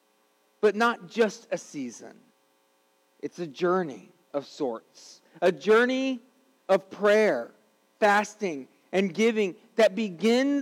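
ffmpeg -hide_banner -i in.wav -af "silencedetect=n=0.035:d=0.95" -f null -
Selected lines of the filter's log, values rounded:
silence_start: 1.85
silence_end: 3.24 | silence_duration: 1.39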